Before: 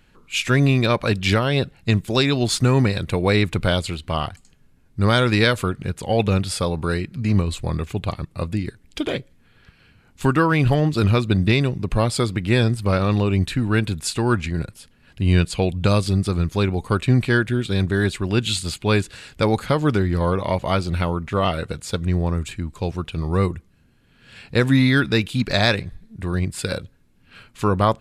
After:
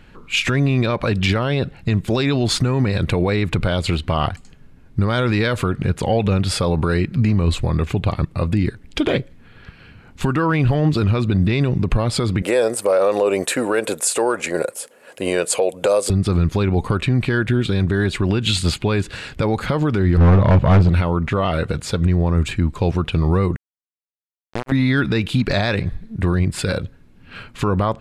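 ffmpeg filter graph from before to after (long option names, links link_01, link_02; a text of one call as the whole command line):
ffmpeg -i in.wav -filter_complex "[0:a]asettb=1/sr,asplit=3[link_01][link_02][link_03];[link_01]atrim=end=12.424[link_04];[link_02]atrim=start=12.42:end=16.1,asetpts=PTS-STARTPTS,afade=type=in:duration=0.004:curve=qsin,afade=type=out:start_time=3.676:duration=0.004:curve=qsin,highpass=frequency=520:width_type=q:width=4.1,highshelf=frequency=5800:width_type=q:width=1.5:gain=12.5[link_05];[link_03]atrim=start=16.096[link_06];[link_04][link_05]acrossfade=duration=0.004:curve1=hsin:curve2=qsin[link_07];[link_07][link_06]acrossfade=duration=0.004:curve1=qsin:curve2=hsin,asettb=1/sr,asplit=3[link_08][link_09][link_10];[link_08]atrim=end=20.174[link_11];[link_09]atrim=start=20.17:end=20.89,asetpts=PTS-STARTPTS,afade=type=in:duration=0.004:curve=qsin,afade=type=out:start_time=0.716:duration=0.004:curve=qsin,bass=frequency=250:gain=11,treble=frequency=4000:gain=-11,volume=15.5dB,asoftclip=hard,volume=-15.5dB[link_12];[link_10]atrim=start=20.886[link_13];[link_11][link_12]acrossfade=duration=0.004:curve1=hsin:curve2=qsin[link_14];[link_14][link_13]acrossfade=duration=0.004:curve1=qsin:curve2=hsin,asettb=1/sr,asplit=3[link_15][link_16][link_17];[link_15]atrim=end=23.564[link_18];[link_16]atrim=start=23.56:end=24.72,asetpts=PTS-STARTPTS,afade=type=in:duration=0.004:curve=qsin,afade=type=out:start_time=1.156:duration=0.004:curve=qsin,acompressor=threshold=-21dB:ratio=6:attack=3.2:release=140:knee=1:detection=peak,acrusher=bits=2:mix=0:aa=0.5[link_19];[link_17]atrim=start=24.716[link_20];[link_18][link_19]acrossfade=duration=0.004:curve1=hsin:curve2=qsin[link_21];[link_21][link_20]acrossfade=duration=0.004:curve1=qsin:curve2=hsin,highshelf=frequency=4800:gain=-11.5,acompressor=threshold=-19dB:ratio=6,alimiter=level_in=18dB:limit=-1dB:release=50:level=0:latency=1,volume=-7.5dB" out.wav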